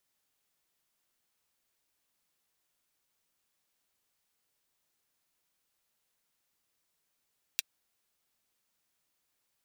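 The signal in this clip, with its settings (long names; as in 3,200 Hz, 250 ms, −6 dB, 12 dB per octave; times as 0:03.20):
closed synth hi-hat, high-pass 2,700 Hz, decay 0.03 s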